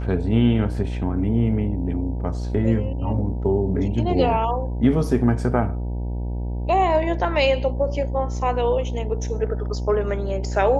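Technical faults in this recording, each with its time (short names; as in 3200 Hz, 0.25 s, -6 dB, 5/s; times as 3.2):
buzz 60 Hz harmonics 16 -26 dBFS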